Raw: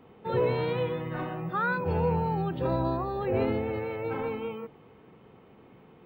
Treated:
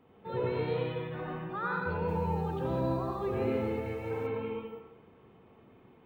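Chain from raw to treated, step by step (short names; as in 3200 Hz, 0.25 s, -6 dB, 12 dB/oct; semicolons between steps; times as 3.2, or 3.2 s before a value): reverb RT60 0.85 s, pre-delay 85 ms, DRR -1.5 dB; 1.95–4.27 lo-fi delay 0.132 s, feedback 35%, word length 7-bit, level -15 dB; gain -8 dB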